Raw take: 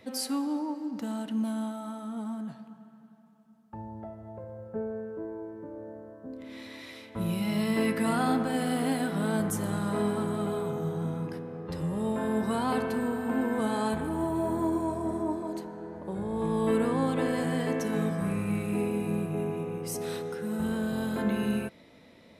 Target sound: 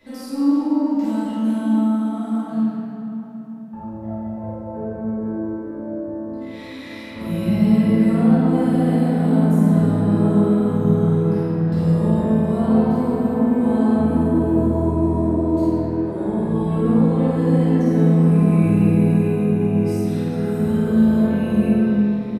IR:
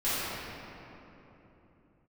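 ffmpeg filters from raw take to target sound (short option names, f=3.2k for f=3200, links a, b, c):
-filter_complex "[0:a]acrossover=split=650[a][b];[b]acompressor=threshold=-46dB:ratio=10[c];[a][c]amix=inputs=2:normalize=0,asplit=2[d][e];[e]adelay=49,volume=-2.5dB[f];[d][f]amix=inputs=2:normalize=0[g];[1:a]atrim=start_sample=2205[h];[g][h]afir=irnorm=-1:irlink=0,volume=-2.5dB"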